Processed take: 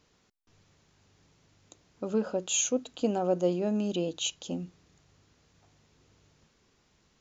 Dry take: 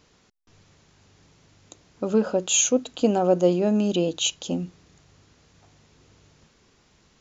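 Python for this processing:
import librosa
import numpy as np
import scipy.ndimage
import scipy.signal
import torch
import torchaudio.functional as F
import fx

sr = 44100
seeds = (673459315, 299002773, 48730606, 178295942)

y = F.gain(torch.from_numpy(x), -7.5).numpy()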